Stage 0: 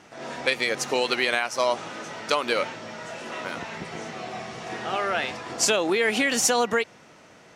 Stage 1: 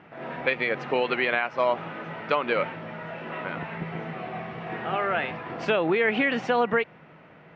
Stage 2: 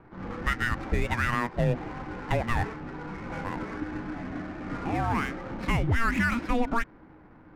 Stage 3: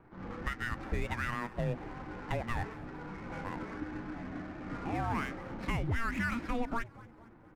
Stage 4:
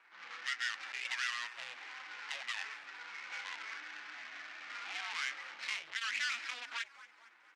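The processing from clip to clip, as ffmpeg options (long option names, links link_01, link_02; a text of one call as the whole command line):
ffmpeg -i in.wav -af "lowpass=frequency=2700:width=0.5412,lowpass=frequency=2700:width=1.3066,equalizer=frequency=160:width=7.1:gain=11.5" out.wav
ffmpeg -i in.wav -filter_complex "[0:a]asplit=2[link_01][link_02];[link_02]alimiter=limit=-16dB:level=0:latency=1:release=16,volume=-1dB[link_03];[link_01][link_03]amix=inputs=2:normalize=0,afreqshift=-470,adynamicsmooth=sensitivity=8:basefreq=1400,volume=-6dB" out.wav
ffmpeg -i in.wav -filter_complex "[0:a]alimiter=limit=-17dB:level=0:latency=1:release=431,asplit=5[link_01][link_02][link_03][link_04][link_05];[link_02]adelay=228,afreqshift=-120,volume=-19.5dB[link_06];[link_03]adelay=456,afreqshift=-240,volume=-25dB[link_07];[link_04]adelay=684,afreqshift=-360,volume=-30.5dB[link_08];[link_05]adelay=912,afreqshift=-480,volume=-36dB[link_09];[link_01][link_06][link_07][link_08][link_09]amix=inputs=5:normalize=0,volume=-6dB" out.wav
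ffmpeg -i in.wav -af "asoftclip=type=tanh:threshold=-36dB,asuperpass=centerf=3900:order=4:qfactor=0.76,volume=12dB" out.wav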